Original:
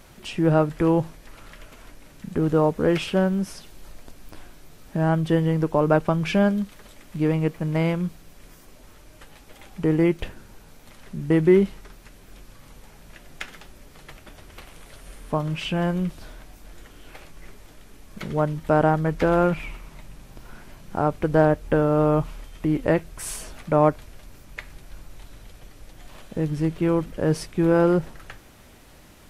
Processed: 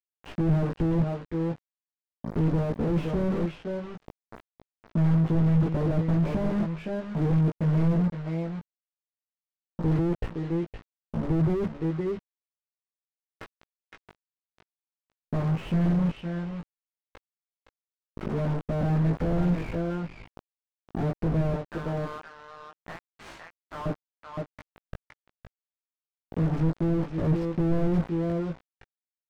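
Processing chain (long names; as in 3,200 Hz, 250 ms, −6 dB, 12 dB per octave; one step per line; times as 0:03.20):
0:21.60–0:23.86: high-pass filter 1,100 Hz 24 dB per octave
bit reduction 5 bits
head-to-tape spacing loss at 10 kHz 32 dB
double-tracking delay 18 ms −2.5 dB
single-tap delay 515 ms −11 dB
slew-rate limiting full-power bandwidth 19 Hz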